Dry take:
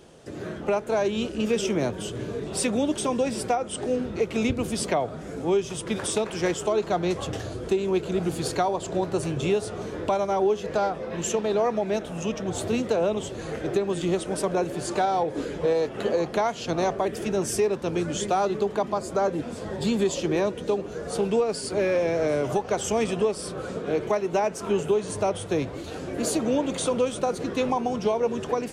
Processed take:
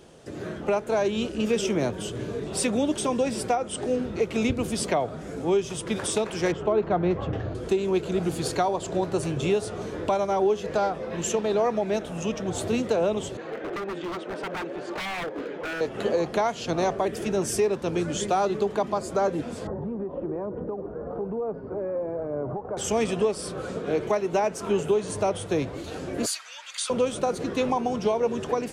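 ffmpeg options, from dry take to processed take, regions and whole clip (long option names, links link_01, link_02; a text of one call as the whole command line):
ffmpeg -i in.wav -filter_complex "[0:a]asettb=1/sr,asplit=3[link_01][link_02][link_03];[link_01]atrim=end=6.524[link_04];[link_02]atrim=start=6.52:end=7.55,asetpts=PTS-STARTPTS,afade=type=in:duration=0.004:curve=qsin,afade=type=out:start_time=1.026:duration=0.004:curve=qsin,lowpass=2100,equalizer=frequency=73:width=0.31:gain=4.5[link_05];[link_03]atrim=start=7.546[link_06];[link_04][link_05]acrossfade=duration=0.004:curve1=hsin:curve2=qsin[link_07];[link_07][link_06]acrossfade=duration=0.004:curve1=qsin:curve2=hsin,asettb=1/sr,asplit=3[link_08][link_09][link_10];[link_08]atrim=end=13.374[link_11];[link_09]atrim=start=13.37:end=15.81,asetpts=PTS-STARTPTS,afade=type=in:duration=0.004:curve=qsin,afade=type=out:start_time=2.436:duration=0.004:curve=qsin,highpass=300,lowpass=2500,aeval=exprs='0.0473*(abs(mod(val(0)/0.0473+3,4)-2)-1)':channel_layout=same[link_12];[link_10]atrim=start=15.806[link_13];[link_11][link_12]acrossfade=duration=0.004:curve1=hsin:curve2=qsin[link_14];[link_14][link_13]acrossfade=duration=0.004:curve1=qsin:curve2=hsin,asettb=1/sr,asplit=3[link_15][link_16][link_17];[link_15]atrim=end=19.674[link_18];[link_16]atrim=start=19.67:end=22.77,asetpts=PTS-STARTPTS,afade=type=in:duration=0.004:curve=qsin,afade=type=out:start_time=3.096:duration=0.004:curve=qsin,lowpass=frequency=1200:width=0.5412,lowpass=frequency=1200:width=1.3066,acompressor=threshold=-29dB:ratio=3:attack=3.2:release=140:knee=1:detection=peak,aphaser=in_gain=1:out_gain=1:delay=3.9:decay=0.24:speed=1.1:type=sinusoidal[link_19];[link_17]atrim=start=22.766[link_20];[link_18][link_19]acrossfade=duration=0.004:curve1=hsin:curve2=qsin[link_21];[link_21][link_20]acrossfade=duration=0.004:curve1=qsin:curve2=hsin,asettb=1/sr,asplit=3[link_22][link_23][link_24];[link_22]atrim=end=26.264[link_25];[link_23]atrim=start=26.26:end=26.9,asetpts=PTS-STARTPTS,afade=type=in:duration=0.004:curve=qsin,afade=type=out:start_time=0.636:duration=0.004:curve=qsin,highpass=frequency=1400:width=0.5412,highpass=frequency=1400:width=1.3066,equalizer=frequency=4700:width_type=o:width=0.26:gain=7[link_26];[link_24]atrim=start=26.896[link_27];[link_25][link_26]acrossfade=duration=0.004:curve1=hsin:curve2=qsin[link_28];[link_28][link_27]acrossfade=duration=0.004:curve1=qsin:curve2=hsin" out.wav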